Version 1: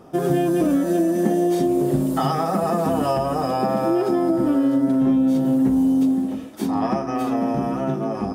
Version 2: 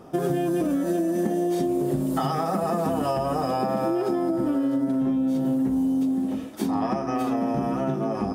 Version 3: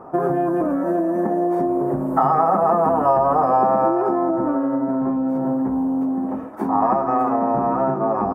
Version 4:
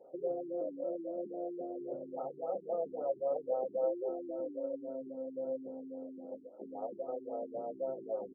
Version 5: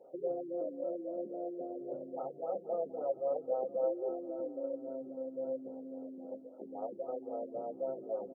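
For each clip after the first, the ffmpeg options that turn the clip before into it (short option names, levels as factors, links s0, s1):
-af "acompressor=threshold=0.0891:ratio=6"
-af "firequalizer=gain_entry='entry(170,0);entry(960,14);entry(3300,-21);entry(12000,-12)':delay=0.05:min_phase=1"
-filter_complex "[0:a]asplit=3[s0][s1][s2];[s0]bandpass=f=530:t=q:w=8,volume=1[s3];[s1]bandpass=f=1840:t=q:w=8,volume=0.501[s4];[s2]bandpass=f=2480:t=q:w=8,volume=0.355[s5];[s3][s4][s5]amix=inputs=3:normalize=0,afftfilt=real='re*lt(b*sr/1024,390*pow(1500/390,0.5+0.5*sin(2*PI*3.7*pts/sr)))':imag='im*lt(b*sr/1024,390*pow(1500/390,0.5+0.5*sin(2*PI*3.7*pts/sr)))':win_size=1024:overlap=0.75,volume=0.501"
-af "aecho=1:1:474|948|1422|1896:0.126|0.0567|0.0255|0.0115"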